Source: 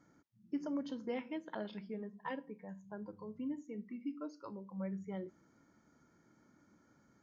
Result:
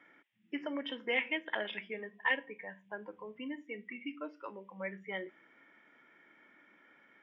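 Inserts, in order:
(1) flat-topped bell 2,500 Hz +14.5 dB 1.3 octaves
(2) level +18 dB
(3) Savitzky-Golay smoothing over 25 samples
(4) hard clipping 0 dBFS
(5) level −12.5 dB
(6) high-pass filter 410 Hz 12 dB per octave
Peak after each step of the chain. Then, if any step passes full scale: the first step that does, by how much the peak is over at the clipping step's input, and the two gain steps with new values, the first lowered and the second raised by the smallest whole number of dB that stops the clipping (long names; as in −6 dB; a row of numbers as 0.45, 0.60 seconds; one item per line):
−22.0, −4.0, −4.5, −4.5, −17.0, −17.5 dBFS
no step passes full scale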